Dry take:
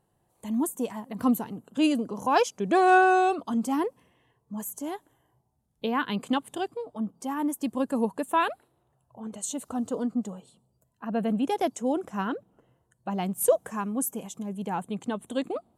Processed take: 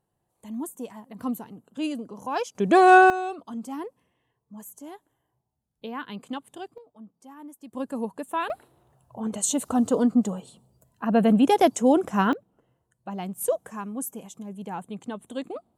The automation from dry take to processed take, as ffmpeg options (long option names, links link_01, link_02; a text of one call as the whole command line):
ffmpeg -i in.wav -af "asetnsamples=nb_out_samples=441:pad=0,asendcmd='2.55 volume volume 5dB;3.1 volume volume -7.5dB;6.78 volume volume -15dB;7.73 volume volume -4dB;8.5 volume volume 8dB;12.33 volume volume -3.5dB',volume=-6dB" out.wav